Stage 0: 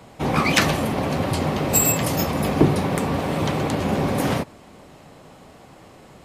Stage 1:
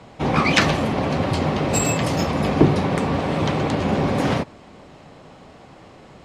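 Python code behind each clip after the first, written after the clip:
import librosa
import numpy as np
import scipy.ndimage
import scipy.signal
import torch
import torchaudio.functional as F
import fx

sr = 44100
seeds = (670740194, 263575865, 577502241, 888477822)

y = scipy.signal.sosfilt(scipy.signal.butter(2, 5900.0, 'lowpass', fs=sr, output='sos'), x)
y = y * librosa.db_to_amplitude(1.5)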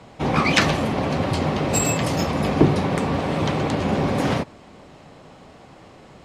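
y = fx.high_shelf(x, sr, hz=9200.0, db=4.5)
y = y * librosa.db_to_amplitude(-1.0)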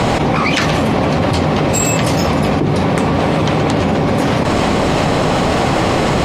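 y = fx.env_flatten(x, sr, amount_pct=100)
y = y * librosa.db_to_amplitude(-3.5)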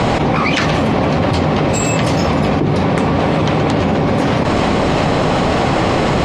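y = fx.air_absorb(x, sr, metres=51.0)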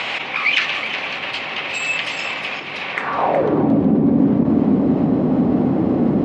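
y = fx.filter_sweep_bandpass(x, sr, from_hz=2600.0, to_hz=250.0, start_s=2.9, end_s=3.65, q=2.7)
y = y + 10.0 ** (-10.0 / 20.0) * np.pad(y, (int(368 * sr / 1000.0), 0))[:len(y)]
y = y * librosa.db_to_amplitude(5.0)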